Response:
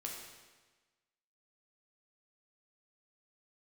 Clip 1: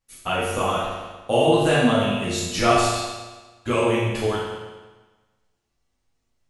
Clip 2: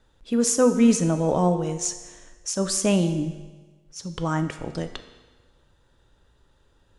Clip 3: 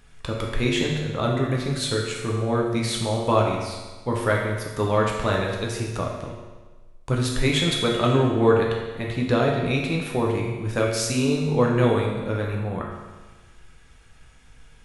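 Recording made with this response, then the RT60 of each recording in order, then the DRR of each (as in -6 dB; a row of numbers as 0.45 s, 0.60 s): 3; 1.3 s, 1.3 s, 1.3 s; -8.5 dB, 8.0 dB, -1.5 dB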